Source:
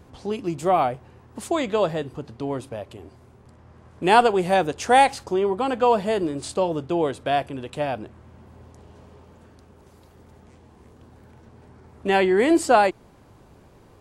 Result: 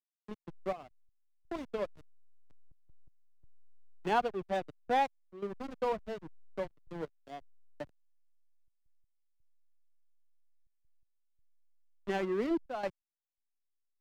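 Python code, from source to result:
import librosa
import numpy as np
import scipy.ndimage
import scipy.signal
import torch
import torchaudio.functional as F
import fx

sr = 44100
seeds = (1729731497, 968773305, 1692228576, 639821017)

y = fx.bin_expand(x, sr, power=1.5)
y = scipy.signal.sosfilt(scipy.signal.ellip(3, 1.0, 40, [180.0, 4200.0], 'bandpass', fs=sr, output='sos'), y)
y = fx.backlash(y, sr, play_db=-20.0)
y = fx.step_gate(y, sr, bpm=83, pattern='xxxx.x..xxx', floor_db=-12.0, edge_ms=4.5)
y = fx.band_squash(y, sr, depth_pct=40)
y = F.gain(torch.from_numpy(y), -9.0).numpy()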